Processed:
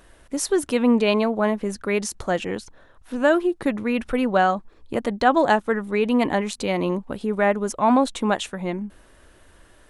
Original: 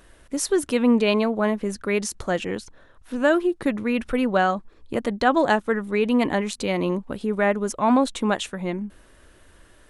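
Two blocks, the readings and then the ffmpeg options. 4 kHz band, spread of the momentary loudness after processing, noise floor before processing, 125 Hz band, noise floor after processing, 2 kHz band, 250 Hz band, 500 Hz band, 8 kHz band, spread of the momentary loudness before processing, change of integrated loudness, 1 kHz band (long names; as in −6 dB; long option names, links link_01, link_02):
0.0 dB, 10 LU, −54 dBFS, 0.0 dB, −53 dBFS, +0.5 dB, 0.0 dB, +1.0 dB, 0.0 dB, 10 LU, +0.5 dB, +2.5 dB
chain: -af "equalizer=frequency=790:width_type=o:width=0.77:gain=3"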